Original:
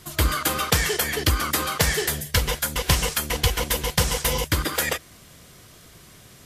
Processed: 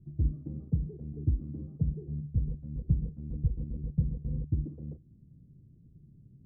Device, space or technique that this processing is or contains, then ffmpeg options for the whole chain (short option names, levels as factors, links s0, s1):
the neighbour's flat through the wall: -af "lowpass=f=270:w=0.5412,lowpass=f=270:w=1.3066,equalizer=f=140:t=o:w=0.54:g=6.5,volume=0.501"